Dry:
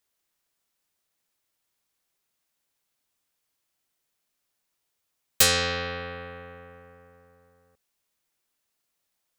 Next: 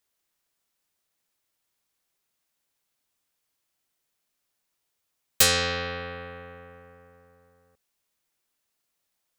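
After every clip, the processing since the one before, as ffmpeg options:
ffmpeg -i in.wav -af anull out.wav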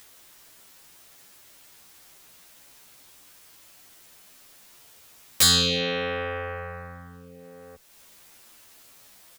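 ffmpeg -i in.wav -filter_complex "[0:a]asplit=2[link_01][link_02];[link_02]acompressor=mode=upward:threshold=-31dB:ratio=2.5,volume=-2dB[link_03];[link_01][link_03]amix=inputs=2:normalize=0,volume=15dB,asoftclip=hard,volume=-15dB,asplit=2[link_04][link_05];[link_05]adelay=11,afreqshift=0.62[link_06];[link_04][link_06]amix=inputs=2:normalize=1,volume=4.5dB" out.wav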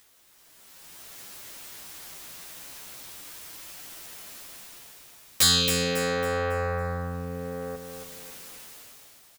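ffmpeg -i in.wav -filter_complex "[0:a]dynaudnorm=framelen=150:gausssize=11:maxgain=16dB,asplit=2[link_01][link_02];[link_02]aecho=0:1:275|550|825|1100|1375:0.473|0.189|0.0757|0.0303|0.0121[link_03];[link_01][link_03]amix=inputs=2:normalize=0,volume=-7.5dB" out.wav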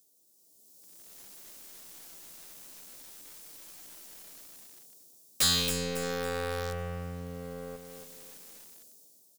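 ffmpeg -i in.wav -filter_complex "[0:a]acrossover=split=140|610|4800[link_01][link_02][link_03][link_04];[link_01]aeval=exprs='sgn(val(0))*max(abs(val(0))-0.00106,0)':channel_layout=same[link_05];[link_03]acrusher=bits=5:dc=4:mix=0:aa=0.000001[link_06];[link_05][link_02][link_06][link_04]amix=inputs=4:normalize=0,volume=-5.5dB" out.wav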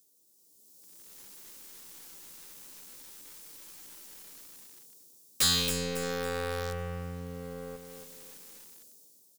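ffmpeg -i in.wav -af "asuperstop=centerf=660:order=4:qfactor=4.4" out.wav

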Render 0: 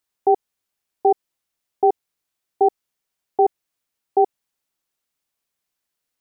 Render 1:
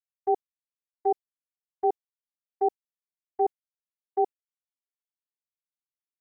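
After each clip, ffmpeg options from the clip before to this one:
ffmpeg -i in.wav -af "agate=range=-33dB:threshold=-14dB:ratio=3:detection=peak,volume=-7.5dB" out.wav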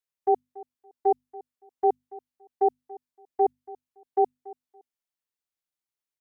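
ffmpeg -i in.wav -af "bandreject=frequency=50:width_type=h:width=6,bandreject=frequency=100:width_type=h:width=6,bandreject=frequency=150:width_type=h:width=6,bandreject=frequency=200:width_type=h:width=6,bandreject=frequency=250:width_type=h:width=6,aecho=1:1:283|566:0.1|0.021,volume=2.5dB" out.wav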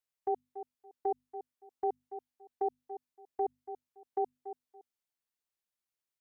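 ffmpeg -i in.wav -af "acompressor=threshold=-21dB:ratio=6,alimiter=limit=-22dB:level=0:latency=1,volume=-1.5dB" out.wav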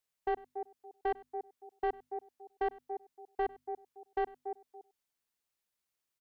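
ffmpeg -i in.wav -filter_complex "[0:a]asoftclip=type=tanh:threshold=-30.5dB,asplit=2[link_01][link_02];[link_02]adelay=99.13,volume=-21dB,highshelf=frequency=4000:gain=-2.23[link_03];[link_01][link_03]amix=inputs=2:normalize=0,volume=4dB" out.wav

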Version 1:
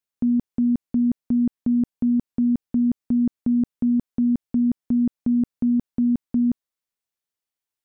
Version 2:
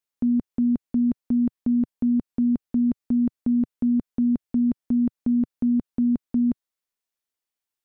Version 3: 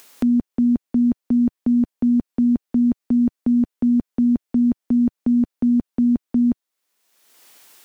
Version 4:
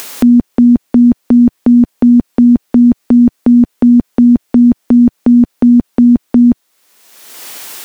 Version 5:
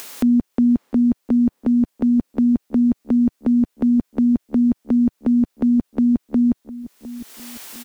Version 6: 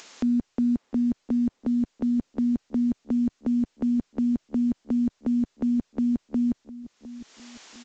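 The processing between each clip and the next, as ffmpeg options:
ffmpeg -i in.wav -af "equalizer=frequency=130:width_type=o:width=0.75:gain=-7.5" out.wav
ffmpeg -i in.wav -filter_complex "[0:a]acrossover=split=170[link_01][link_02];[link_01]aeval=exprs='val(0)*gte(abs(val(0)),0.00266)':channel_layout=same[link_03];[link_02]acompressor=mode=upward:threshold=-27dB:ratio=2.5[link_04];[link_03][link_04]amix=inputs=2:normalize=0,volume=4dB" out.wav
ffmpeg -i in.wav -af "alimiter=level_in=22.5dB:limit=-1dB:release=50:level=0:latency=1,volume=-1dB" out.wav
ffmpeg -i in.wav -filter_complex "[0:a]asplit=2[link_01][link_02];[link_02]adelay=706,lowpass=frequency=980:poles=1,volume=-15dB,asplit=2[link_03][link_04];[link_04]adelay=706,lowpass=frequency=980:poles=1,volume=0.48,asplit=2[link_05][link_06];[link_06]adelay=706,lowpass=frequency=980:poles=1,volume=0.48,asplit=2[link_07][link_08];[link_08]adelay=706,lowpass=frequency=980:poles=1,volume=0.48[link_09];[link_01][link_03][link_05][link_07][link_09]amix=inputs=5:normalize=0,volume=-9dB" out.wav
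ffmpeg -i in.wav -af "volume=-7.5dB" -ar 16000 -c:a pcm_alaw out.wav

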